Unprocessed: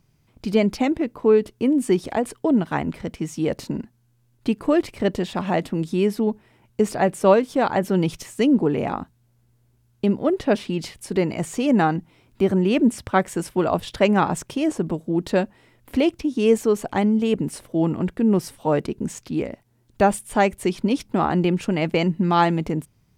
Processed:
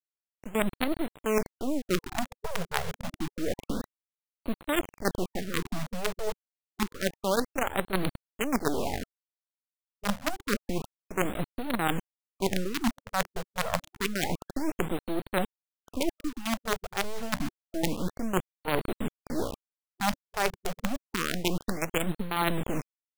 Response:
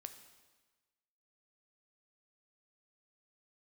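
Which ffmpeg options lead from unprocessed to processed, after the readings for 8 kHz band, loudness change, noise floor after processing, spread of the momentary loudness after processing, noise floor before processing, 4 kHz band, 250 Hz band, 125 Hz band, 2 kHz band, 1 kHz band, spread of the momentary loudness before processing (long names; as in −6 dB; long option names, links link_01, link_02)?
−2.0 dB, −10.0 dB, below −85 dBFS, 7 LU, −63 dBFS, −2.0 dB, −12.0 dB, −10.5 dB, −3.0 dB, −8.5 dB, 10 LU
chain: -af "adynamicsmooth=sensitivity=2:basefreq=980,acrusher=bits=3:dc=4:mix=0:aa=0.000001,areverse,acompressor=threshold=-25dB:ratio=6,areverse,afftfilt=real='re*(1-between(b*sr/1024,260*pow(6400/260,0.5+0.5*sin(2*PI*0.28*pts/sr))/1.41,260*pow(6400/260,0.5+0.5*sin(2*PI*0.28*pts/sr))*1.41))':imag='im*(1-between(b*sr/1024,260*pow(6400/260,0.5+0.5*sin(2*PI*0.28*pts/sr))/1.41,260*pow(6400/260,0.5+0.5*sin(2*PI*0.28*pts/sr))*1.41))':win_size=1024:overlap=0.75,volume=1.5dB"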